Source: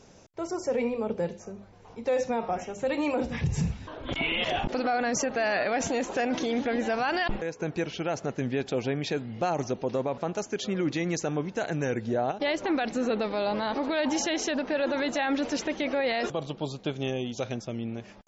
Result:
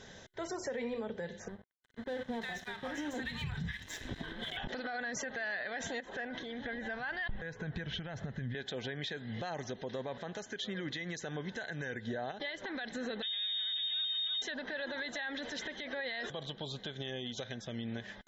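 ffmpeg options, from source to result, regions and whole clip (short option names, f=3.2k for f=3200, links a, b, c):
-filter_complex "[0:a]asettb=1/sr,asplit=3[a][b][c];[a]atrim=end=1.484[d];[b]atrim=start=1.48:end=4.57,asetpts=PTS-STARTPTS,afade=t=in:d=0.004:c=qsin,afade=t=out:st=3.086:d=0.004:c=qsin,equalizer=f=560:w=2.3:g=-10.5,acrossover=split=870[e][f];[f]adelay=360[g];[e][g]amix=inputs=2:normalize=0,atrim=end_sample=136269,aeval=exprs='sgn(val(0))*max(abs(val(0))-0.00473,0)':c=same[h];[c]atrim=start=4.566[i];[d][h]acrossfade=d=0.004:c1=hsin:c2=qsin[j];[j][i]acrossfade=d=0.004:c1=qsin:c2=hsin,asettb=1/sr,asplit=3[k][l][m];[k]atrim=end=6.004[n];[l]atrim=start=6:end=8.55,asetpts=PTS-STARTPTS,afade=t=in:d=0.004:c=qsin,afade=t=out:st=2.546:d=0.004:c=qsin,lowpass=f=2.3k:p=1,acompressor=threshold=-38dB:ratio=5:attack=3.2:release=140:knee=1:detection=peak,asubboost=boost=8:cutoff=160[o];[m]atrim=start=8.546[p];[n][o]acrossfade=d=0.004:c1=hsin:c2=qsin[q];[q][p]acrossfade=d=0.004:c1=qsin:c2=hsin,asettb=1/sr,asplit=3[r][s][t];[r]atrim=end=13.224[u];[s]atrim=start=13.22:end=14.42,asetpts=PTS-STARTPTS,afade=t=in:d=0.004:c=qsin,afade=t=out:st=1.196:d=0.004:c=qsin,aeval=exprs='abs(val(0))':c=same,acrossover=split=220|860[v][w][x];[v]acompressor=threshold=-29dB:ratio=4[y];[w]acompressor=threshold=-41dB:ratio=4[z];[x]acompressor=threshold=-45dB:ratio=4[aa];[y][z][aa]amix=inputs=3:normalize=0,lowpass=f=3.1k:t=q:w=0.5098,lowpass=f=3.1k:t=q:w=0.6013,lowpass=f=3.1k:t=q:w=0.9,lowpass=f=3.1k:t=q:w=2.563,afreqshift=-3700[ab];[t]atrim=start=14.416[ac];[u][ab]acrossfade=d=0.004:c1=hsin:c2=qsin[ad];[ad][ac]acrossfade=d=0.004:c1=qsin:c2=hsin,superequalizer=6b=0.631:11b=3.98:13b=3.55,acompressor=threshold=-29dB:ratio=4,alimiter=level_in=5.5dB:limit=-24dB:level=0:latency=1:release=281,volume=-5.5dB"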